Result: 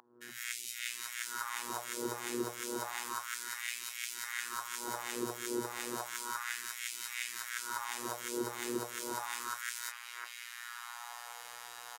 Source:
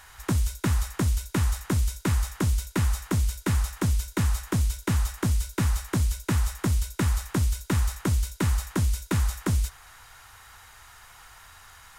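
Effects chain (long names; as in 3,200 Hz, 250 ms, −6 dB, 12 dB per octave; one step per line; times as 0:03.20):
peak hold with a rise ahead of every peak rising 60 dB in 0.52 s
three-band delay without the direct sound lows, highs, mids 220/770 ms, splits 430/1,600 Hz
phases set to zero 120 Hz
in parallel at −4 dB: soft clipping −22.5 dBFS, distortion −10 dB
on the sum: auto-filter high-pass sine 0.32 Hz 410–2,400 Hz
downward compressor 2 to 1, threshold −39 dBFS, peak gain reduction 9.5 dB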